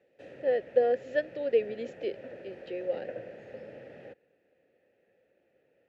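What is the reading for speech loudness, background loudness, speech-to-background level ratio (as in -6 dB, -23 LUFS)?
-31.0 LUFS, -46.5 LUFS, 15.5 dB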